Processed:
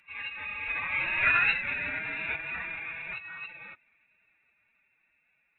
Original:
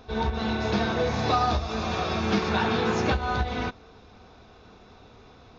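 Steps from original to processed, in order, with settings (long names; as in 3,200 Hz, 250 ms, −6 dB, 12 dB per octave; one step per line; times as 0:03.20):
source passing by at 0:01.40, 20 m/s, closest 6.6 metres
voice inversion scrambler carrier 2,700 Hz
phase-vocoder pitch shift with formants kept +6.5 semitones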